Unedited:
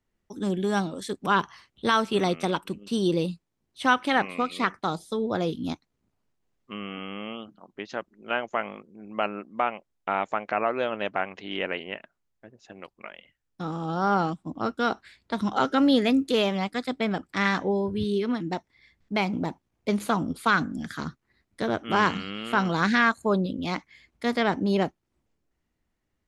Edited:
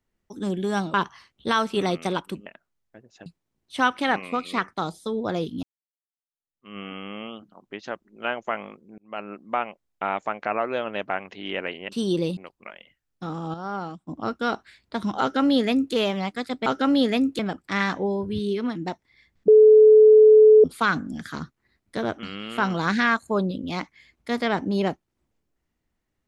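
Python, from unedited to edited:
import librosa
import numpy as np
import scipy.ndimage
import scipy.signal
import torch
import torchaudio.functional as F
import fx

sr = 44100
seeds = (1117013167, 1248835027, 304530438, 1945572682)

y = fx.edit(x, sr, fx.cut(start_s=0.94, length_s=0.38),
    fx.swap(start_s=2.84, length_s=0.48, other_s=11.95, other_length_s=0.8),
    fx.fade_in_span(start_s=5.69, length_s=1.15, curve='exp'),
    fx.fade_in_span(start_s=9.04, length_s=0.41),
    fx.clip_gain(start_s=13.92, length_s=0.53, db=-8.0),
    fx.duplicate(start_s=15.59, length_s=0.73, to_s=17.04),
    fx.bleep(start_s=19.13, length_s=1.16, hz=431.0, db=-8.5),
    fx.cut(start_s=21.88, length_s=0.3), tone=tone)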